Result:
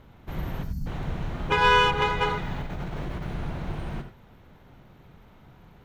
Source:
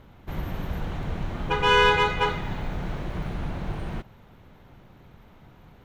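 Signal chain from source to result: 0.63–0.87 s: time-frequency box 290–4200 Hz -26 dB; 2.56–3.31 s: compressor with a negative ratio -31 dBFS, ratio -1; gated-style reverb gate 110 ms rising, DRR 8.5 dB; 1.52–2.02 s: reverse; trim -1.5 dB

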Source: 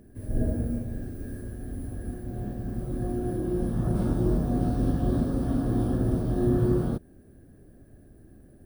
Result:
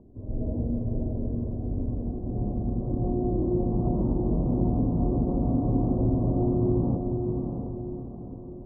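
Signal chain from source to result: elliptic low-pass 1 kHz, stop band 50 dB; compression, threshold -26 dBFS, peak gain reduction 7.5 dB; on a send: echo that smears into a reverb 645 ms, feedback 45%, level -4 dB; on the sum: level rider gain up to 4 dB

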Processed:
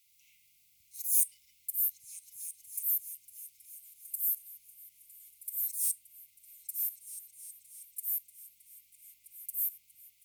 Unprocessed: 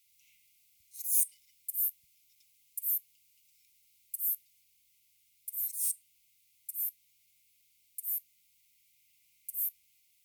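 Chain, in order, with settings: delay with an opening low-pass 319 ms, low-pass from 400 Hz, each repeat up 2 oct, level -3 dB; trim +1 dB

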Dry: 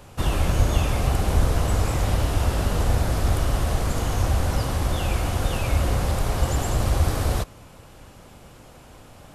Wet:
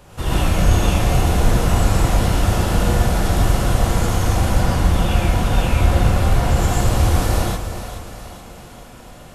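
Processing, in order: 4.50–6.56 s: tone controls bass +2 dB, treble -4 dB; two-band feedback delay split 450 Hz, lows 294 ms, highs 425 ms, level -10 dB; gated-style reverb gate 160 ms rising, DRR -5.5 dB; trim -1 dB

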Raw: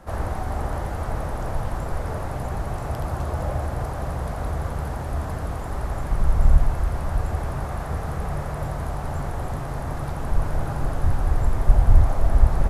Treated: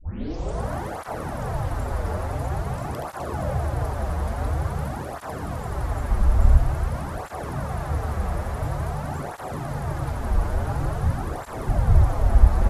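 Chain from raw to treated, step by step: tape start-up on the opening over 0.71 s; cancelling through-zero flanger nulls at 0.48 Hz, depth 7.8 ms; trim +3.5 dB

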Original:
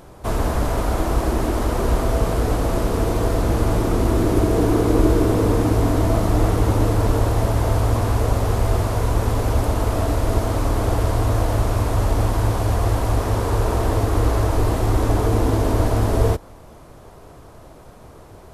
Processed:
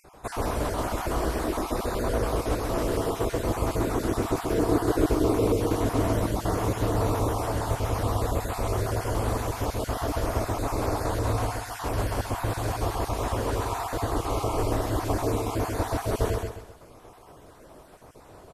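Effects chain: random holes in the spectrogram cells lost 36%; bass shelf 170 Hz -8 dB; on a send: feedback delay 131 ms, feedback 36%, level -4 dB; on the sum: trim -3.5 dB

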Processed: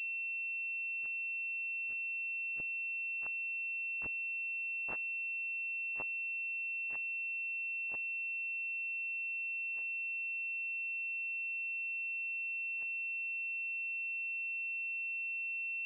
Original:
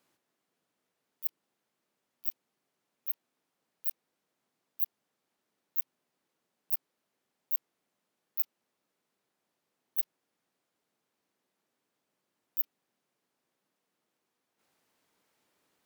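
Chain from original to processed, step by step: rotating-head pitch shifter -2 st; Doppler pass-by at 4.75 s, 56 m/s, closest 16 m; class-D stage that switches slowly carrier 2.7 kHz

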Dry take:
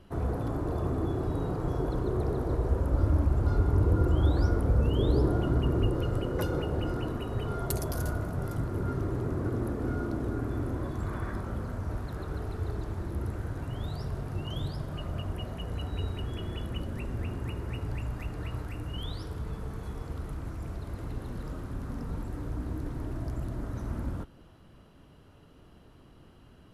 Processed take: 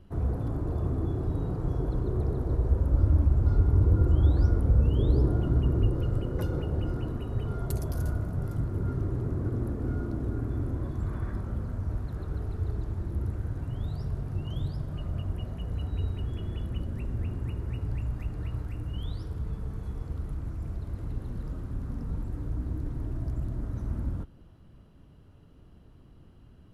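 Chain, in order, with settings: bass shelf 270 Hz +11 dB; trim -7 dB

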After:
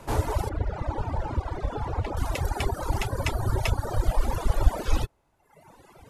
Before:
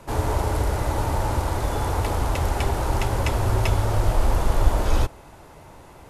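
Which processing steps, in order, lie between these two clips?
reverb removal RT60 1.6 s; 0.49–2.17 s: tape spacing loss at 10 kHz 21 dB; reverb removal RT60 0.88 s

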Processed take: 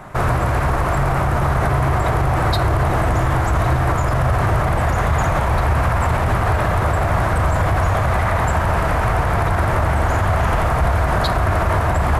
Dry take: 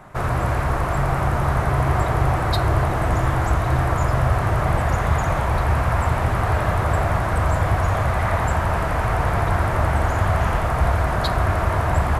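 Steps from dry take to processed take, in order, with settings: peak limiter -16 dBFS, peak gain reduction 9 dB; trim +7 dB

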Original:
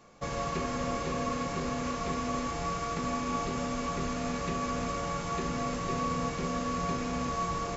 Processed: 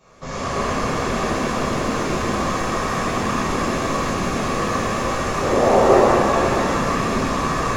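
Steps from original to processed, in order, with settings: 5.42–5.95 s: high-order bell 560 Hz +14.5 dB; whisper effect; pitch-shifted reverb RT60 2.9 s, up +7 st, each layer -8 dB, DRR -11 dB; trim -1 dB

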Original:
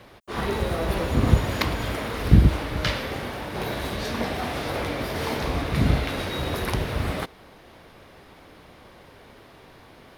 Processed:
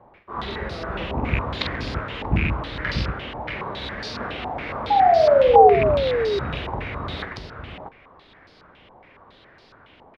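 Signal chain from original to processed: rattle on loud lows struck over -15 dBFS, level -14 dBFS; painted sound fall, 4.90–5.76 s, 390–840 Hz -10 dBFS; on a send: multi-tap echo 46/135/634 ms -6/-10/-5 dB; on the sum: step-sequenced low-pass 7.2 Hz 870–4800 Hz; trim -7 dB

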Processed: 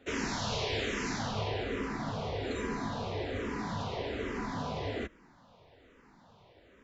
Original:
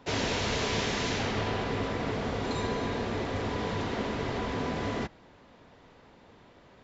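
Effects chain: barber-pole phaser -1.2 Hz; trim -1 dB

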